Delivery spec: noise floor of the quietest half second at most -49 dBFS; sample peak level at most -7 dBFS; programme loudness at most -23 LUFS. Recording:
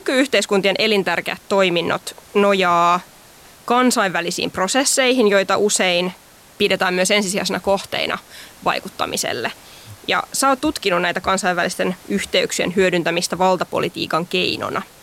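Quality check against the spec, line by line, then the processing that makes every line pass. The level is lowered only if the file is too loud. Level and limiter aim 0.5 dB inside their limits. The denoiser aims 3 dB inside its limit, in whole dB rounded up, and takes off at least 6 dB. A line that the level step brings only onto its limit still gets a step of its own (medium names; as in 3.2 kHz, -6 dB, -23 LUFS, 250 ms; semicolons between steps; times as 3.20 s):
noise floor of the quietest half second -45 dBFS: fail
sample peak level -5.0 dBFS: fail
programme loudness -18.0 LUFS: fail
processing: trim -5.5 dB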